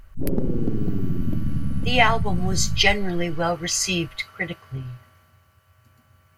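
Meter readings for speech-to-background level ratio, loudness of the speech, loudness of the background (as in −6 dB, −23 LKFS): 5.0 dB, −23.0 LKFS, −28.0 LKFS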